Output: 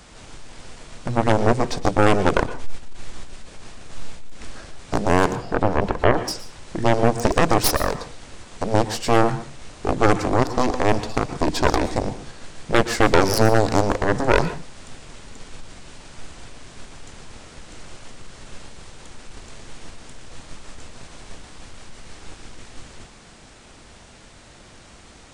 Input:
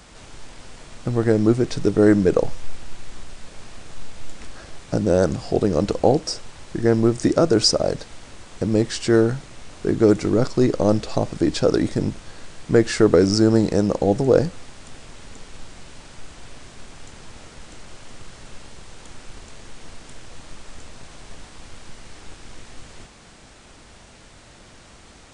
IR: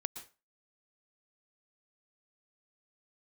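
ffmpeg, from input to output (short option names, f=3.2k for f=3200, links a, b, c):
-filter_complex "[0:a]aeval=exprs='0.841*(cos(1*acos(clip(val(0)/0.841,-1,1)))-cos(1*PI/2))+0.075*(cos(5*acos(clip(val(0)/0.841,-1,1)))-cos(5*PI/2))+0.299*(cos(6*acos(clip(val(0)/0.841,-1,1)))-cos(6*PI/2))+0.422*(cos(7*acos(clip(val(0)/0.841,-1,1)))-cos(7*PI/2))':c=same,asplit=2[a][b];[1:a]atrim=start_sample=2205[c];[b][c]afir=irnorm=-1:irlink=0,volume=3dB[d];[a][d]amix=inputs=2:normalize=0,asettb=1/sr,asplit=3[e][f][g];[e]atrim=end=5.354[h];[f]atrim=start=5.35:end=6.28,asetpts=PTS-STARTPTS,afade=t=in:d=0.004:c=qsin,afade=t=out:st=0.926:d=0.004:c=qsin,acrossover=split=3000[i][j];[j]acompressor=threshold=-36dB:ratio=4:attack=1:release=60[k];[i][k]amix=inputs=2:normalize=0[l];[g]atrim=start=6.276[m];[h][l]acrossfade=d=0.004:c1=hsin:c2=qsin[n];[n][m]acrossfade=d=0.004:c1=qsin:c2=hsin,volume=-13dB"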